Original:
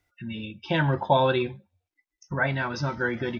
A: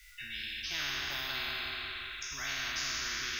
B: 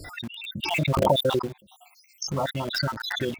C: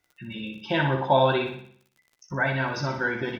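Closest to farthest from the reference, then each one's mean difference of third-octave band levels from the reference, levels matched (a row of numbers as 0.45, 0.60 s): C, B, A; 3.5, 12.5, 17.5 dB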